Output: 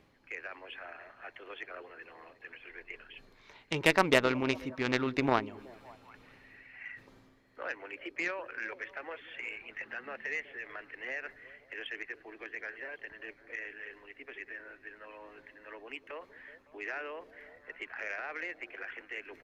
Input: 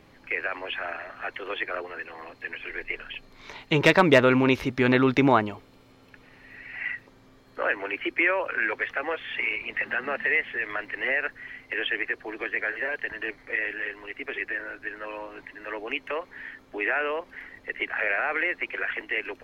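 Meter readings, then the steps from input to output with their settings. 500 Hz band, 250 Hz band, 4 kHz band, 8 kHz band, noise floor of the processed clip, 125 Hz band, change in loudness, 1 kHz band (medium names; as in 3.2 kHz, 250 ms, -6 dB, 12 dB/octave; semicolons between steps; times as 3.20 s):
-9.5 dB, -10.5 dB, -7.0 dB, no reading, -62 dBFS, -11.0 dB, -9.5 dB, -8.5 dB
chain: reverse; upward compressor, threshold -33 dBFS; reverse; repeats whose band climbs or falls 186 ms, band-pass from 290 Hz, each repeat 0.7 oct, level -11 dB; Chebyshev shaper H 3 -13 dB, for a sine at -5 dBFS; resampled via 32 kHz; trim -4 dB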